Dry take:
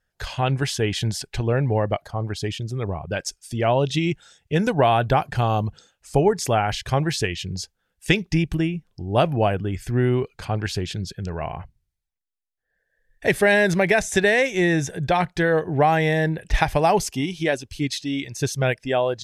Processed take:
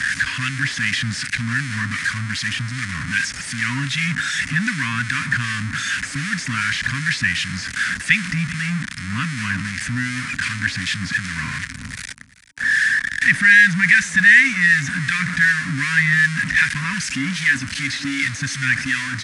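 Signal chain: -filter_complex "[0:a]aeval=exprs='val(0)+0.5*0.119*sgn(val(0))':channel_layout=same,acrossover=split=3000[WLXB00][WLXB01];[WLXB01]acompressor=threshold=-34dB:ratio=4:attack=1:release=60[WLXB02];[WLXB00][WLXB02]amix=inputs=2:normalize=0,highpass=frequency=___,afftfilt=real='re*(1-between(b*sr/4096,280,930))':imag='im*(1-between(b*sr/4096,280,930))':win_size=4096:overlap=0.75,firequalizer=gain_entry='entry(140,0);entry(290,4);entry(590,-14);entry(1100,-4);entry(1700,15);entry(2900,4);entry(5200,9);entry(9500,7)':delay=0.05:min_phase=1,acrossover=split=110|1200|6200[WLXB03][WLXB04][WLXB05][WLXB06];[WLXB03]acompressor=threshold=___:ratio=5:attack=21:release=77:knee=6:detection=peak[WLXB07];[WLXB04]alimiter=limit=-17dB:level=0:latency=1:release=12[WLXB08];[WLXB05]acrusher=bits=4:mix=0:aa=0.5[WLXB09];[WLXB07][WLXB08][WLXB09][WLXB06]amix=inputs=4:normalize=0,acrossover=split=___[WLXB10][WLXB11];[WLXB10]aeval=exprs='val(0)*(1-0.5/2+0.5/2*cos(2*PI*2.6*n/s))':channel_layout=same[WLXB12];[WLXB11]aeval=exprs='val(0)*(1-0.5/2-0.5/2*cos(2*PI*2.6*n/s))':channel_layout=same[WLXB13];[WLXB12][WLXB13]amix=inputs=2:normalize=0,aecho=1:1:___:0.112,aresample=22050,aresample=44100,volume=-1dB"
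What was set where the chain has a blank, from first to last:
86, -38dB, 1500, 387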